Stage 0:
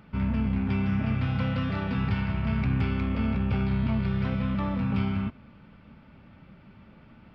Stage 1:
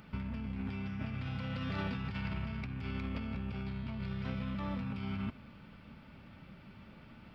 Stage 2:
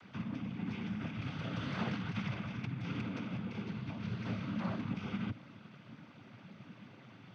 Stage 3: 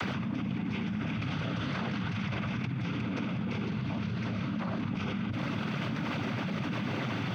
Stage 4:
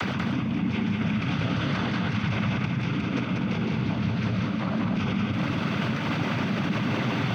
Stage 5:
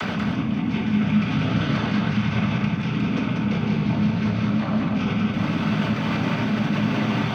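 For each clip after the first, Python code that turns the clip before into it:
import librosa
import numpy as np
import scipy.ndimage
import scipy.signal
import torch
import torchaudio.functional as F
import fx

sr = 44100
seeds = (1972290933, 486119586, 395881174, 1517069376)

y1 = fx.high_shelf(x, sr, hz=3400.0, db=10.5)
y1 = fx.over_compress(y1, sr, threshold_db=-31.0, ratio=-1.0)
y1 = y1 * librosa.db_to_amplitude(-7.0)
y2 = fx.noise_vocoder(y1, sr, seeds[0], bands=16)
y2 = y2 * librosa.db_to_amplitude(1.0)
y3 = fx.env_flatten(y2, sr, amount_pct=100)
y4 = y3 + 10.0 ** (-3.5 / 20.0) * np.pad(y3, (int(190 * sr / 1000.0), 0))[:len(y3)]
y4 = y4 * librosa.db_to_amplitude(5.0)
y5 = fx.room_shoebox(y4, sr, seeds[1], volume_m3=310.0, walls='furnished', distance_m=1.5)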